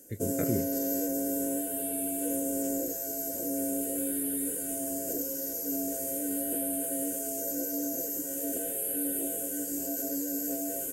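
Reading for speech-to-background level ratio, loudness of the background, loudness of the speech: -3.5 dB, -31.0 LUFS, -34.5 LUFS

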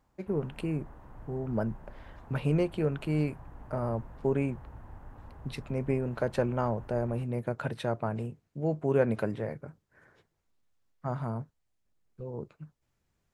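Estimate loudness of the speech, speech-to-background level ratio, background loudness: -32.5 LUFS, 19.0 dB, -51.5 LUFS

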